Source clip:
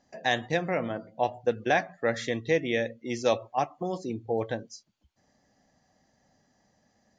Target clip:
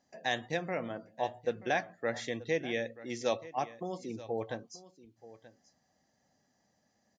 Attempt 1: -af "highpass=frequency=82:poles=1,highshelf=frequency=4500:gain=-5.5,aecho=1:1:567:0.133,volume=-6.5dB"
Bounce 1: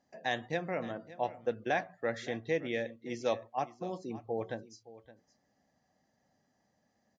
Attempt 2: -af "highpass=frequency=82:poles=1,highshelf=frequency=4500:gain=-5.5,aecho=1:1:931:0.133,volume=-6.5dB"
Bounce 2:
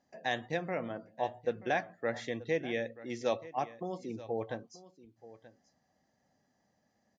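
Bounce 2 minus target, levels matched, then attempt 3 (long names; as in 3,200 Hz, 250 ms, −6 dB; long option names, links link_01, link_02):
8,000 Hz band −5.5 dB
-af "highpass=frequency=82:poles=1,highshelf=frequency=4500:gain=3.5,aecho=1:1:931:0.133,volume=-6.5dB"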